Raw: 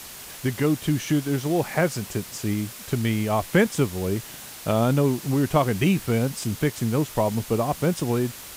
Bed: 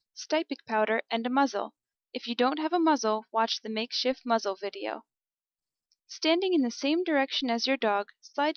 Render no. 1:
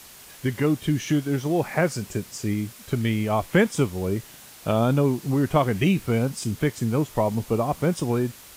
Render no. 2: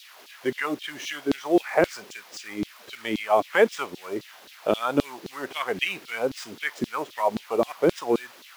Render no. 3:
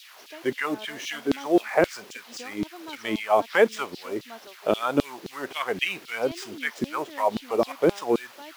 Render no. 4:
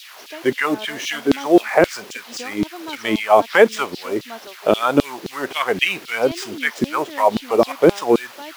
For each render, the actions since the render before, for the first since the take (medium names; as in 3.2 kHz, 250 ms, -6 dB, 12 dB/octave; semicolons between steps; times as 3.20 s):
noise print and reduce 6 dB
median filter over 5 samples; LFO high-pass saw down 3.8 Hz 260–4000 Hz
add bed -17.5 dB
trim +8 dB; peak limiter -1 dBFS, peak gain reduction 2.5 dB